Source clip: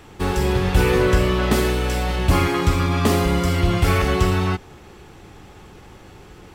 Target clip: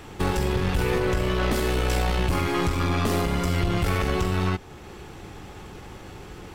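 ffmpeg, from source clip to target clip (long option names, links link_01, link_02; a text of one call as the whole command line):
ffmpeg -i in.wav -af "alimiter=limit=-16dB:level=0:latency=1:release=446,aeval=exprs='(tanh(11.2*val(0)+0.5)-tanh(0.5))/11.2':channel_layout=same,volume=4.5dB" out.wav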